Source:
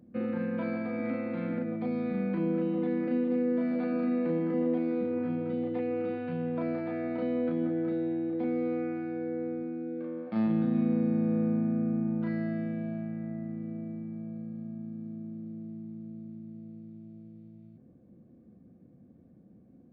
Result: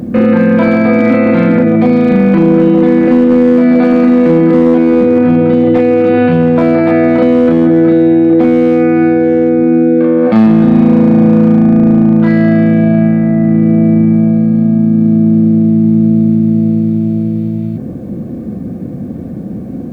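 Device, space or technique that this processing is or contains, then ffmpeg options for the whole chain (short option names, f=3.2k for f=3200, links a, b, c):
loud club master: -af "acompressor=threshold=-32dB:ratio=2,asoftclip=type=hard:threshold=-27.5dB,alimiter=level_in=36dB:limit=-1dB:release=50:level=0:latency=1,volume=-1dB"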